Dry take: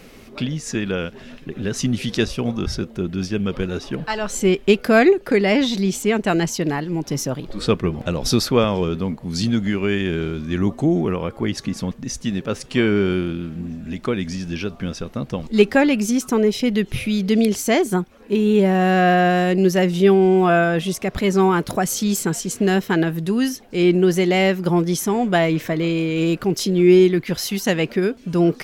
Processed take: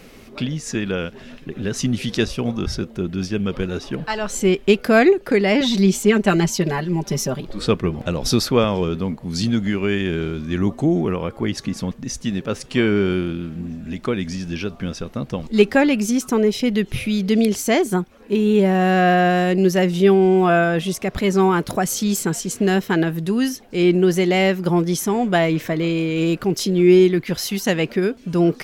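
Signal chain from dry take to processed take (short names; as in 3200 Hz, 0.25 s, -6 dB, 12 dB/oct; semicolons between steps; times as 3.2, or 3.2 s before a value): 5.6–7.41 comb 5.1 ms, depth 79%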